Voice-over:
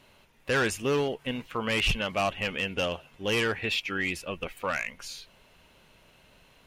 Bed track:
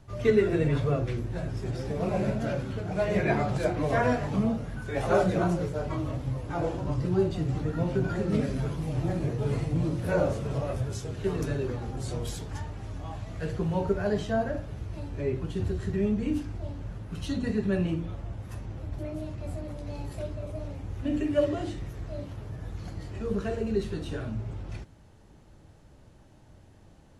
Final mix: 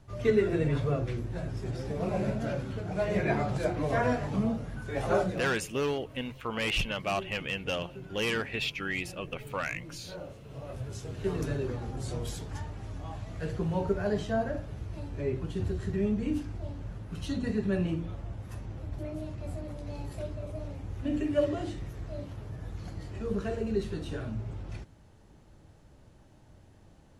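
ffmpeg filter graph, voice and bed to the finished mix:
-filter_complex "[0:a]adelay=4900,volume=-3.5dB[a];[1:a]volume=12.5dB,afade=t=out:st=5.12:d=0.41:silence=0.188365,afade=t=in:st=10.45:d=0.84:silence=0.177828[b];[a][b]amix=inputs=2:normalize=0"

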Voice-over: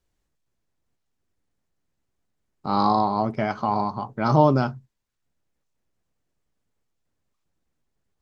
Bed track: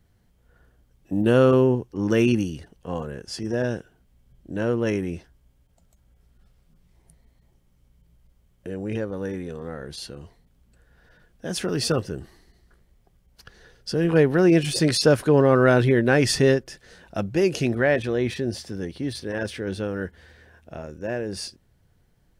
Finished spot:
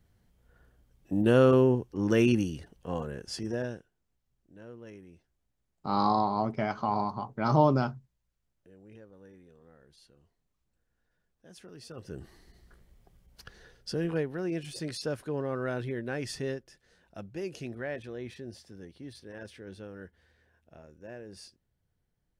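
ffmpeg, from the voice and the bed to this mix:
-filter_complex "[0:a]adelay=3200,volume=-5.5dB[a];[1:a]volume=19.5dB,afade=t=out:st=3.35:d=0.57:silence=0.105925,afade=t=in:st=11.95:d=0.61:silence=0.0668344,afade=t=out:st=13.23:d=1.04:silence=0.158489[b];[a][b]amix=inputs=2:normalize=0"

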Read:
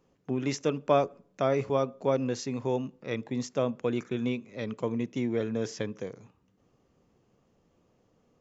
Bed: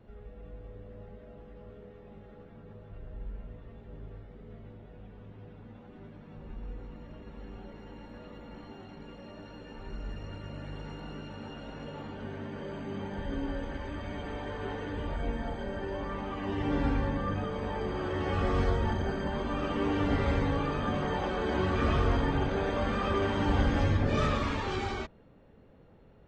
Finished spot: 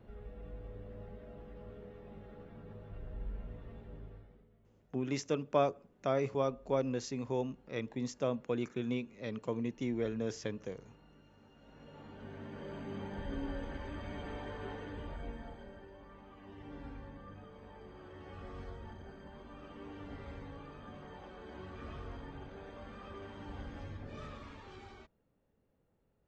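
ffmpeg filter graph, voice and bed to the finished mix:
-filter_complex "[0:a]adelay=4650,volume=-5.5dB[a];[1:a]volume=14dB,afade=t=out:st=3.76:d=0.74:silence=0.112202,afade=t=in:st=11.54:d=1.24:silence=0.177828,afade=t=out:st=14.31:d=1.62:silence=0.199526[b];[a][b]amix=inputs=2:normalize=0"

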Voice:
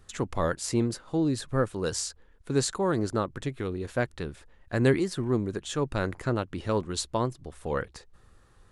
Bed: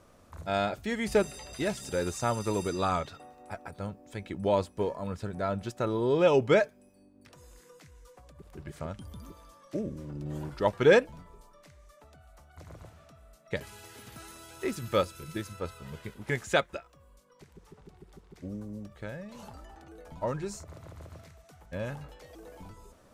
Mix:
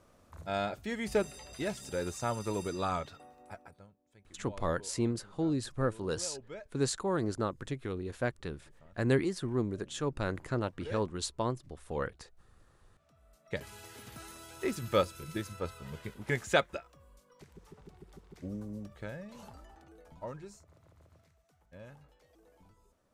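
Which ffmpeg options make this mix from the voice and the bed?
-filter_complex "[0:a]adelay=4250,volume=-5dB[a];[1:a]volume=17.5dB,afade=t=out:st=3.4:d=0.47:silence=0.11885,afade=t=in:st=12.92:d=0.85:silence=0.0794328,afade=t=out:st=18.8:d=1.84:silence=0.199526[b];[a][b]amix=inputs=2:normalize=0"

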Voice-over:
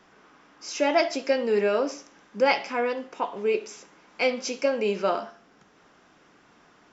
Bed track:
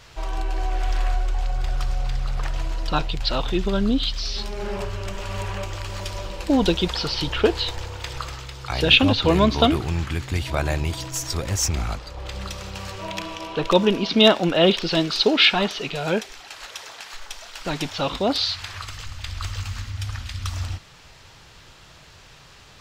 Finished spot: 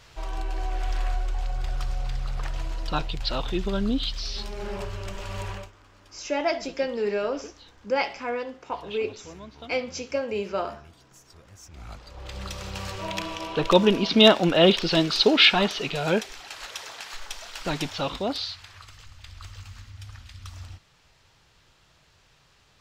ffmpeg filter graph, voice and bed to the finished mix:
-filter_complex "[0:a]adelay=5500,volume=-3.5dB[a];[1:a]volume=21dB,afade=t=out:st=5.51:d=0.21:silence=0.0841395,afade=t=in:st=11.7:d=1.07:silence=0.0530884,afade=t=out:st=17.59:d=1.05:silence=0.251189[b];[a][b]amix=inputs=2:normalize=0"

